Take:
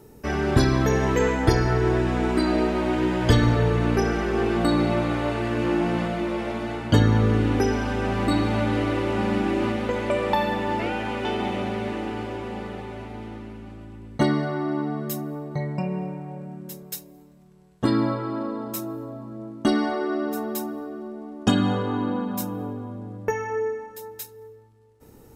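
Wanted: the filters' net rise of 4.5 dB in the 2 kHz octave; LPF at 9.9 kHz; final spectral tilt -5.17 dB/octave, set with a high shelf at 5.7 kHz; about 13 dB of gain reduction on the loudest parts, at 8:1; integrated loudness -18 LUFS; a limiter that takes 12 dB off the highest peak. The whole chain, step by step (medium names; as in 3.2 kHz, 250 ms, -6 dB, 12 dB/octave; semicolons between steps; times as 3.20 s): low-pass 9.9 kHz; peaking EQ 2 kHz +5 dB; treble shelf 5.7 kHz +6.5 dB; compression 8:1, threshold -26 dBFS; trim +17 dB; peak limiter -9 dBFS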